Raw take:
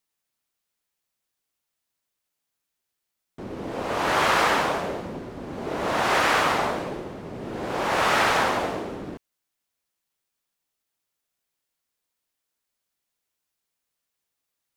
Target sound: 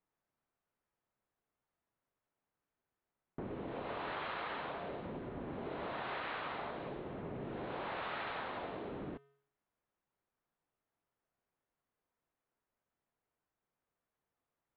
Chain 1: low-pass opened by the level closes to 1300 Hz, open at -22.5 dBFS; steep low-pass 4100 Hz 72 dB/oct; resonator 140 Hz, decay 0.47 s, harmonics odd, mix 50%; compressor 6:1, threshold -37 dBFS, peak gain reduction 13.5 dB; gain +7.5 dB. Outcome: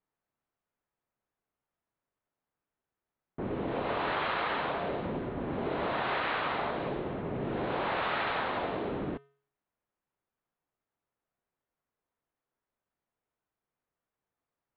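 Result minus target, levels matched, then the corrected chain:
compressor: peak gain reduction -9.5 dB
low-pass opened by the level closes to 1300 Hz, open at -22.5 dBFS; steep low-pass 4100 Hz 72 dB/oct; resonator 140 Hz, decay 0.47 s, harmonics odd, mix 50%; compressor 6:1, threshold -48.5 dBFS, peak gain reduction 23 dB; gain +7.5 dB

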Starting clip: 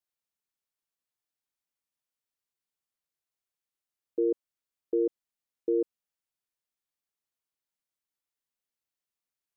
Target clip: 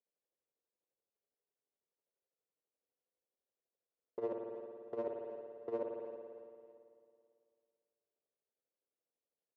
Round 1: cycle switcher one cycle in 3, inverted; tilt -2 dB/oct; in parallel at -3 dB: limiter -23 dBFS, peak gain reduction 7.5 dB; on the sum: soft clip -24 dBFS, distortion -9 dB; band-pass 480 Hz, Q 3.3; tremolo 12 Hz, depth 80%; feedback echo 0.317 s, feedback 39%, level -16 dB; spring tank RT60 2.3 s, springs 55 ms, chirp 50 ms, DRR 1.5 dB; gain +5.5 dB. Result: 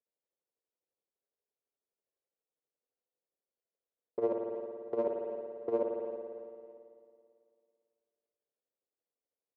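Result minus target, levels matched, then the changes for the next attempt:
soft clip: distortion -4 dB
change: soft clip -32.5 dBFS, distortion -5 dB

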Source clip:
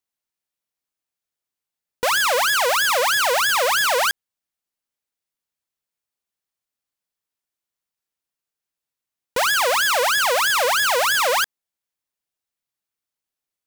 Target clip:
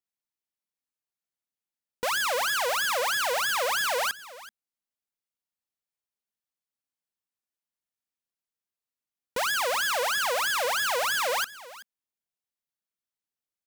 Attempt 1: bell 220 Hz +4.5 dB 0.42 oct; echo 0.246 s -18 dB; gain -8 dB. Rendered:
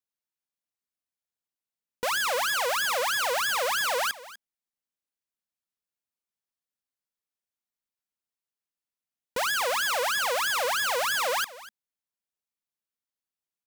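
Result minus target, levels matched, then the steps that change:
echo 0.134 s early
change: echo 0.38 s -18 dB

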